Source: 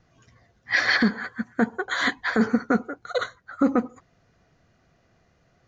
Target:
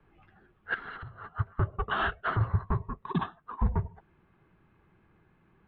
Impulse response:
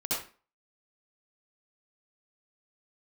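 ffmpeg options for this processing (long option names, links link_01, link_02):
-filter_complex "[0:a]alimiter=limit=-17.5dB:level=0:latency=1:release=323,asubboost=boost=7.5:cutoff=120,aeval=exprs='(tanh(7.08*val(0)+0.3)-tanh(0.3))/7.08':channel_layout=same,lowshelf=frequency=380:gain=11,highpass=frequency=250:width_type=q:width=0.5412,highpass=frequency=250:width_type=q:width=1.307,lowpass=frequency=3300:width_type=q:width=0.5176,lowpass=frequency=3300:width_type=q:width=0.7071,lowpass=frequency=3300:width_type=q:width=1.932,afreqshift=-330,asettb=1/sr,asplit=3[link_01][link_02][link_03];[link_01]atrim=end=0.744[link_04];[link_02]atrim=start=0.74:end=1.35,asetpts=PTS-STARTPTS,afade=type=in:duration=0.004:curve=qsin,afade=type=out:start_time=0.606:duration=0.004:curve=qsin,acompressor=threshold=-39dB:ratio=16[link_05];[link_03]atrim=start=1.346[link_06];[link_04][link_05]acrossfade=duration=0.004:curve1=hsin:curve2=qsin[link_07];[link_07][link_06]acrossfade=duration=0.004:curve1=qsin:curve2=hsin"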